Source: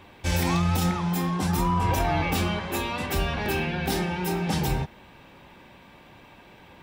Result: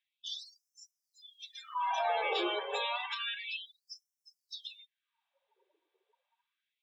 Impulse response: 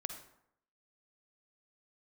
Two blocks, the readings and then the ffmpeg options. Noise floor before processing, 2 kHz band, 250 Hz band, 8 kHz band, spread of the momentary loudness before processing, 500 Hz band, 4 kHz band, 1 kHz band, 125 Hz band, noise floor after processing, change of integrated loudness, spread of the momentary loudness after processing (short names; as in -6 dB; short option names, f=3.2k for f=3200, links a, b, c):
-51 dBFS, -8.5 dB, -22.5 dB, -20.0 dB, 5 LU, -8.5 dB, -4.0 dB, -8.0 dB, under -40 dB, under -85 dBFS, -9.0 dB, 19 LU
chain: -filter_complex "[0:a]highpass=f=120:w=0.5412,highpass=f=120:w=1.3066,equalizer=f=150:t=q:w=4:g=9,equalizer=f=280:t=q:w=4:g=7,equalizer=f=450:t=q:w=4:g=6,equalizer=f=3.5k:t=q:w=4:g=8,lowpass=f=7.7k:w=0.5412,lowpass=f=7.7k:w=1.3066,asplit=2[a][b];[b]acompressor=threshold=-39dB:ratio=4,volume=-2dB[c];[a][c]amix=inputs=2:normalize=0,asoftclip=type=tanh:threshold=-12.5dB,acrossover=split=160[d][e];[e]acrusher=bits=5:mode=log:mix=0:aa=0.000001[f];[d][f]amix=inputs=2:normalize=0,afftdn=nr=35:nf=-30,afftfilt=real='re*gte(b*sr/1024,340*pow(5300/340,0.5+0.5*sin(2*PI*0.3*pts/sr)))':imag='im*gte(b*sr/1024,340*pow(5300/340,0.5+0.5*sin(2*PI*0.3*pts/sr)))':win_size=1024:overlap=0.75,volume=-4.5dB"